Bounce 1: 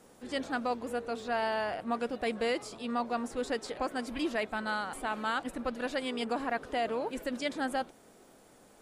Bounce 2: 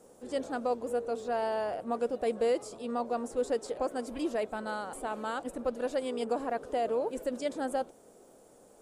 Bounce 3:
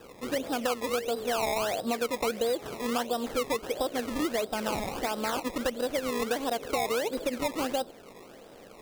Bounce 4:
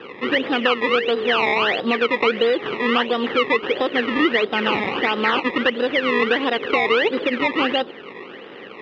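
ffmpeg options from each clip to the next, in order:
ffmpeg -i in.wav -af "equalizer=frequency=500:width_type=o:width=1:gain=8,equalizer=frequency=2000:width_type=o:width=1:gain=-6,equalizer=frequency=4000:width_type=o:width=1:gain=-4,equalizer=frequency=8000:width_type=o:width=1:gain=5,volume=-3dB" out.wav
ffmpeg -i in.wav -af "acompressor=threshold=-35dB:ratio=4,acrusher=samples=20:mix=1:aa=0.000001:lfo=1:lforange=20:lforate=1.5,volume=8dB" out.wav
ffmpeg -i in.wav -filter_complex "[0:a]asplit=2[link_01][link_02];[link_02]volume=28dB,asoftclip=hard,volume=-28dB,volume=-3.5dB[link_03];[link_01][link_03]amix=inputs=2:normalize=0,highpass=170,equalizer=frequency=390:width_type=q:width=4:gain=5,equalizer=frequency=650:width_type=q:width=4:gain=-9,equalizer=frequency=1200:width_type=q:width=4:gain=4,equalizer=frequency=1900:width_type=q:width=4:gain=10,equalizer=frequency=2900:width_type=q:width=4:gain=9,lowpass=frequency=3500:width=0.5412,lowpass=frequency=3500:width=1.3066,volume=6.5dB" out.wav

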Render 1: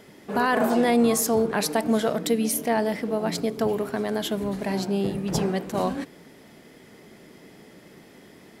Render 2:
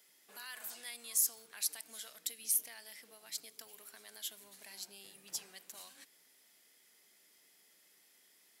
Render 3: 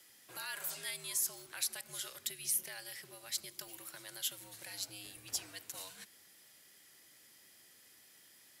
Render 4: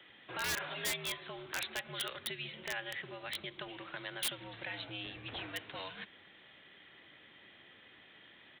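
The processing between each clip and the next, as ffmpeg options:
ffmpeg -i in.wav -filter_complex "[0:a]aderivative,acrossover=split=100|1500|2900[link_01][link_02][link_03][link_04];[link_02]acompressor=threshold=-54dB:ratio=6[link_05];[link_01][link_05][link_03][link_04]amix=inputs=4:normalize=0,volume=-6dB" out.wav
ffmpeg -i in.wav -filter_complex "[0:a]acrossover=split=230|640|2900[link_01][link_02][link_03][link_04];[link_04]alimiter=level_in=4dB:limit=-24dB:level=0:latency=1:release=152,volume=-4dB[link_05];[link_01][link_02][link_03][link_05]amix=inputs=4:normalize=0,afreqshift=-79,volume=5dB" out.wav
ffmpeg -i in.wav -af "aresample=8000,aresample=44100,aeval=exprs='(mod(75*val(0)+1,2)-1)/75':channel_layout=same,volume=9.5dB" out.wav

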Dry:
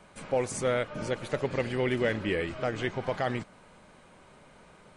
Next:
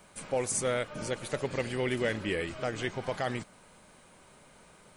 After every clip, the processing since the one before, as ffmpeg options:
ffmpeg -i in.wav -af "aemphasis=mode=production:type=50fm,volume=-2.5dB" out.wav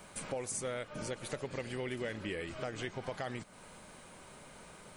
ffmpeg -i in.wav -af "acompressor=threshold=-43dB:ratio=3,volume=3.5dB" out.wav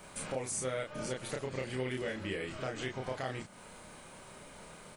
ffmpeg -i in.wav -filter_complex "[0:a]asplit=2[link_01][link_02];[link_02]adelay=31,volume=-2.5dB[link_03];[link_01][link_03]amix=inputs=2:normalize=0" out.wav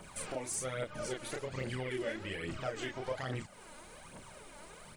ffmpeg -i in.wav -af "aphaser=in_gain=1:out_gain=1:delay=3.6:decay=0.59:speed=1.2:type=triangular,volume=-2.5dB" out.wav

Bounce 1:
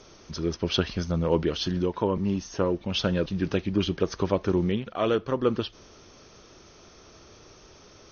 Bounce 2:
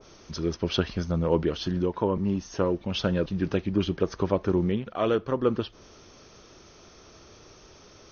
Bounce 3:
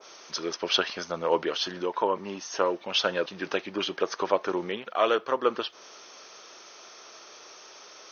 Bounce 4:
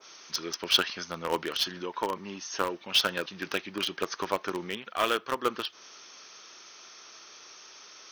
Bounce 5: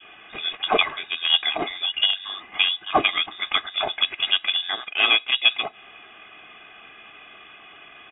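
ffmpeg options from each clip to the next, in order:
ffmpeg -i in.wav -af "adynamicequalizer=threshold=0.00562:dfrequency=2100:dqfactor=0.7:tfrequency=2100:tqfactor=0.7:attack=5:release=100:ratio=0.375:range=3:mode=cutabove:tftype=highshelf" out.wav
ffmpeg -i in.wav -af "highpass=660,volume=6.5dB" out.wav
ffmpeg -i in.wav -filter_complex "[0:a]equalizer=frequency=580:width=0.87:gain=-9.5,asplit=2[link_01][link_02];[link_02]acrusher=bits=3:mix=0:aa=0.000001,volume=-9dB[link_03];[link_01][link_03]amix=inputs=2:normalize=0" out.wav
ffmpeg -i in.wav -af "aecho=1:1:2.3:0.74,lowpass=frequency=3200:width_type=q:width=0.5098,lowpass=frequency=3200:width_type=q:width=0.6013,lowpass=frequency=3200:width_type=q:width=0.9,lowpass=frequency=3200:width_type=q:width=2.563,afreqshift=-3800,volume=6.5dB" out.wav

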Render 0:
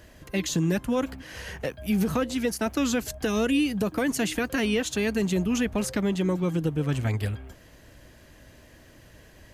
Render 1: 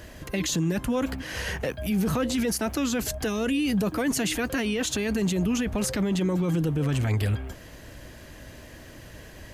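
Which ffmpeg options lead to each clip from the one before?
ffmpeg -i in.wav -af "alimiter=level_in=1.5dB:limit=-24dB:level=0:latency=1:release=16,volume=-1.5dB,volume=7dB" out.wav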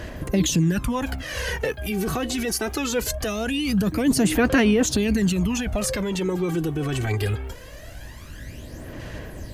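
ffmpeg -i in.wav -af "aphaser=in_gain=1:out_gain=1:delay=2.7:decay=0.62:speed=0.22:type=sinusoidal,volume=1.5dB" out.wav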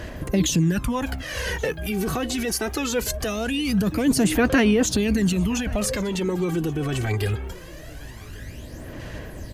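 ffmpeg -i in.wav -af "aecho=1:1:1127:0.0841" out.wav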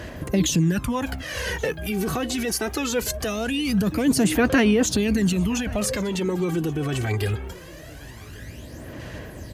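ffmpeg -i in.wav -af "highpass=58" out.wav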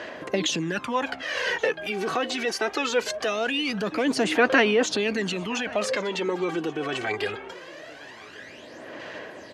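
ffmpeg -i in.wav -af "highpass=440,lowpass=4100,volume=3.5dB" out.wav

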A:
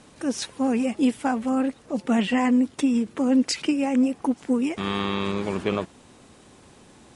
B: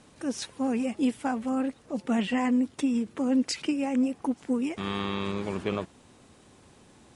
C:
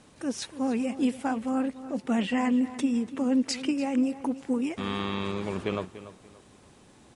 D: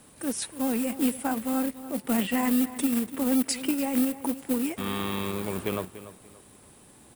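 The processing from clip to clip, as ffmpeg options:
ffmpeg -i in.wav -af "equalizer=frequency=93:width_type=o:width=1.2:gain=2.5,volume=-5dB" out.wav
ffmpeg -i in.wav -filter_complex "[0:a]asplit=2[link_01][link_02];[link_02]adelay=290,lowpass=frequency=4500:poles=1,volume=-14dB,asplit=2[link_03][link_04];[link_04]adelay=290,lowpass=frequency=4500:poles=1,volume=0.3,asplit=2[link_05][link_06];[link_06]adelay=290,lowpass=frequency=4500:poles=1,volume=0.3[link_07];[link_01][link_03][link_05][link_07]amix=inputs=4:normalize=0" out.wav
ffmpeg -i in.wav -filter_complex "[0:a]acrossover=split=390[link_01][link_02];[link_01]acrusher=bits=3:mode=log:mix=0:aa=0.000001[link_03];[link_03][link_02]amix=inputs=2:normalize=0,aexciter=amount=7:drive=2.3:freq=8500" out.wav

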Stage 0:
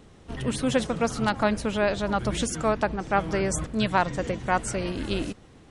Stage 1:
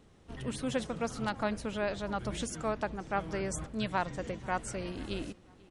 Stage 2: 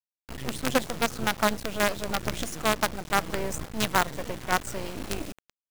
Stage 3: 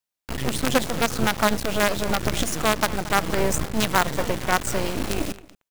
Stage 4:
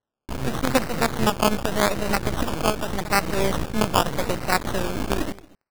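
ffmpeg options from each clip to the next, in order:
ffmpeg -i in.wav -filter_complex "[0:a]asplit=2[link_01][link_02];[link_02]adelay=488,lowpass=frequency=2700:poles=1,volume=-23dB,asplit=2[link_03][link_04];[link_04]adelay=488,lowpass=frequency=2700:poles=1,volume=0.36[link_05];[link_01][link_03][link_05]amix=inputs=3:normalize=0,volume=-9dB" out.wav
ffmpeg -i in.wav -af "acrusher=bits=5:dc=4:mix=0:aa=0.000001,volume=7.5dB" out.wav
ffmpeg -i in.wav -filter_complex "[0:a]asplit=2[link_01][link_02];[link_02]adelay=227.4,volume=-22dB,highshelf=frequency=4000:gain=-5.12[link_03];[link_01][link_03]amix=inputs=2:normalize=0,alimiter=level_in=15dB:limit=-1dB:release=50:level=0:latency=1,volume=-6dB" out.wav
ffmpeg -i in.wav -af "acrusher=samples=18:mix=1:aa=0.000001:lfo=1:lforange=10.8:lforate=0.85" out.wav

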